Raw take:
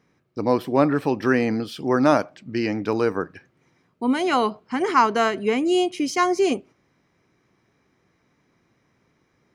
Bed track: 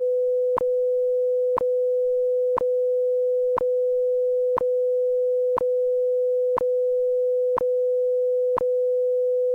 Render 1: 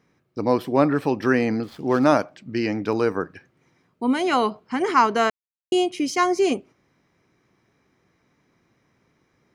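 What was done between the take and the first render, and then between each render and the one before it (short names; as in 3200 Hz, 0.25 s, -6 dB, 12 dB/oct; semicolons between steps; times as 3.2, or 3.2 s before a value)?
1.63–2.04 median filter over 15 samples; 5.3–5.72 mute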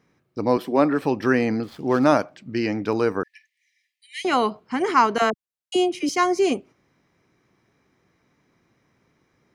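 0.57–1.02 HPF 170 Hz 24 dB/oct; 3.23–4.25 brick-wall FIR high-pass 1700 Hz; 5.18–6.09 dispersion lows, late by 42 ms, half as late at 610 Hz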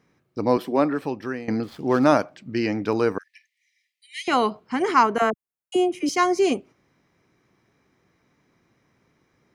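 0.6–1.48 fade out, to -17 dB; 3.18–4.28 elliptic high-pass 1900 Hz, stop band 50 dB; 5.03–6.06 bell 4400 Hz -12 dB 1.1 oct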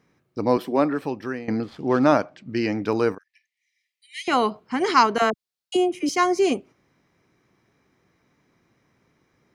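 1.39–2.5 air absorption 57 m; 3.15–4.3 fade in, from -14 dB; 4.82–5.77 bell 4300 Hz +11 dB 0.99 oct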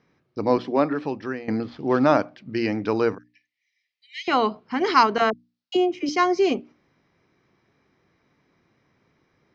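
steep low-pass 5700 Hz 36 dB/oct; notches 60/120/180/240/300 Hz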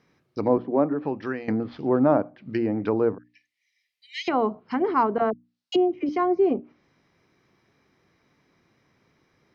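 treble ducked by the level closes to 820 Hz, closed at -20.5 dBFS; high shelf 4300 Hz +6 dB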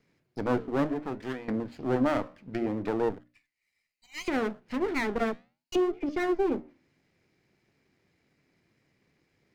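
minimum comb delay 0.43 ms; flange 0.66 Hz, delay 4.4 ms, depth 9.4 ms, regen -82%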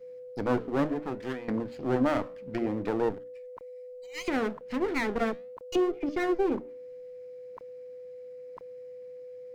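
add bed track -22.5 dB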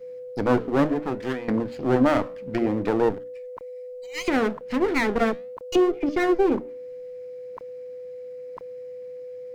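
gain +6.5 dB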